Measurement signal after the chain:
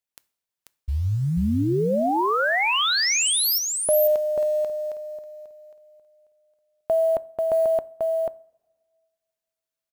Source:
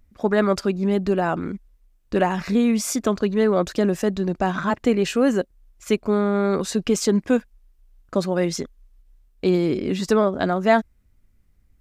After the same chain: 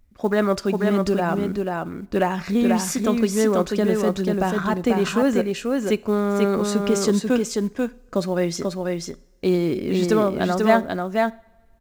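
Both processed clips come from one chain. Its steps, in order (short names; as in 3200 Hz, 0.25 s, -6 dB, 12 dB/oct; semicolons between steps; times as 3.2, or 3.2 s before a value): short-mantissa float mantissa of 4-bit; on a send: echo 0.489 s -3.5 dB; on the sum: two-slope reverb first 0.47 s, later 1.9 s, from -18 dB, DRR 17.5 dB; gain -1 dB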